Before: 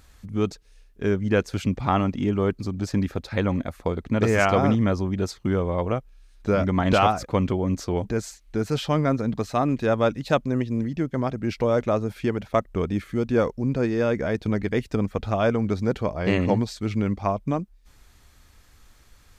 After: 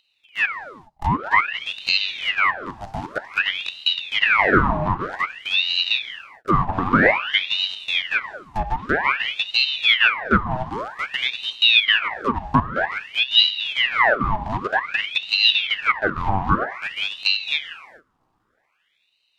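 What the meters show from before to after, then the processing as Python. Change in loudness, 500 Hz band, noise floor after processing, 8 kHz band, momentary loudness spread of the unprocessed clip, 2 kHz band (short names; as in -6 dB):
+5.0 dB, -5.5 dB, -69 dBFS, n/a, 7 LU, +14.0 dB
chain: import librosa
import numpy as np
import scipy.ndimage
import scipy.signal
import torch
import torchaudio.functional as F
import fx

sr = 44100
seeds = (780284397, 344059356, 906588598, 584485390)

p1 = scipy.signal.medfilt(x, 25)
p2 = fx.band_shelf(p1, sr, hz=570.0, db=9.5, octaves=1.3)
p3 = np.where(np.abs(p2) >= 10.0 ** (-19.5 / 20.0), p2, 0.0)
p4 = p2 + F.gain(torch.from_numpy(p3), -5.0).numpy()
p5 = scipy.signal.sosfilt(scipy.signal.butter(16, 210.0, 'highpass', fs=sr, output='sos'), p4)
p6 = fx.rev_gated(p5, sr, seeds[0], gate_ms=450, shape='falling', drr_db=8.5)
p7 = fx.env_lowpass_down(p6, sr, base_hz=1800.0, full_db=-10.5)
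p8 = fx.ring_lfo(p7, sr, carrier_hz=1900.0, swing_pct=80, hz=0.52)
y = F.gain(torch.from_numpy(p8), -3.5).numpy()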